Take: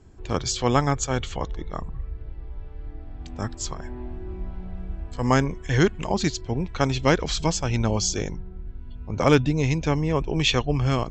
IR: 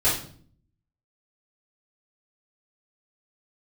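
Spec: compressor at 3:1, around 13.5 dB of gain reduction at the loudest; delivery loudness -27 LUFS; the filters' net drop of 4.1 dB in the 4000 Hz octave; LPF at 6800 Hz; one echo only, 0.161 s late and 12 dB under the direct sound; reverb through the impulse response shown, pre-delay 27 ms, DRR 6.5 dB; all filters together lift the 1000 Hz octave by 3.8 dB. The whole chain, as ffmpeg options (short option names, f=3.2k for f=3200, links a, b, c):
-filter_complex "[0:a]lowpass=6.8k,equalizer=f=1k:t=o:g=5,equalizer=f=4k:t=o:g=-5,acompressor=threshold=-31dB:ratio=3,aecho=1:1:161:0.251,asplit=2[a][b];[1:a]atrim=start_sample=2205,adelay=27[c];[b][c]afir=irnorm=-1:irlink=0,volume=-20.5dB[d];[a][d]amix=inputs=2:normalize=0,volume=5.5dB"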